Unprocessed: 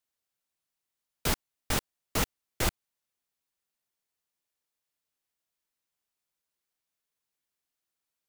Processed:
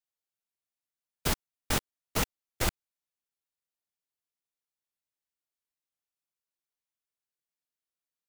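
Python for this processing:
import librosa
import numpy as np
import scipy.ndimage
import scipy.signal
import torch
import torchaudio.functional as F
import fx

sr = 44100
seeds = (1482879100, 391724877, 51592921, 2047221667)

y = fx.level_steps(x, sr, step_db=14)
y = y * librosa.db_to_amplitude(2.0)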